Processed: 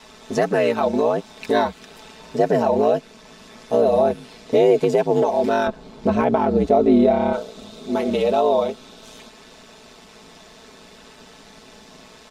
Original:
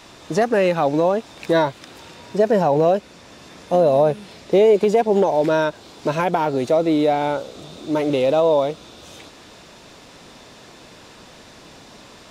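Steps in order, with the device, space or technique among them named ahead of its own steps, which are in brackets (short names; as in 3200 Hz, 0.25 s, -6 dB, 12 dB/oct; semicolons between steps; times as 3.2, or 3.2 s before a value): 5.67–7.33 tilt -3 dB/oct; ring-modulated robot voice (ring modulator 56 Hz; comb 4.6 ms, depth 67%)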